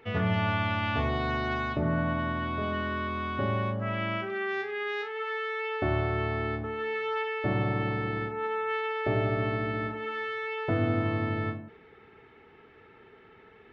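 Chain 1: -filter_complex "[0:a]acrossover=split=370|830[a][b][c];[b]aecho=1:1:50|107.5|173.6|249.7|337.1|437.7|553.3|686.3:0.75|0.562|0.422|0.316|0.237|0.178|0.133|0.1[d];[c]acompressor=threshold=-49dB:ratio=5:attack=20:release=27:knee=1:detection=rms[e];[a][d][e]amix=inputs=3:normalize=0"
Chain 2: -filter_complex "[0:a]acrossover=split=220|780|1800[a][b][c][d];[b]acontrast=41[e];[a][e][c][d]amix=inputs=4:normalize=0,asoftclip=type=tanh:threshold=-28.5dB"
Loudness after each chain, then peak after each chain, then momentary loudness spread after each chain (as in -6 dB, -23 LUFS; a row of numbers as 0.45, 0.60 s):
-31.5, -32.5 LUFS; -15.0, -28.5 dBFS; 7, 20 LU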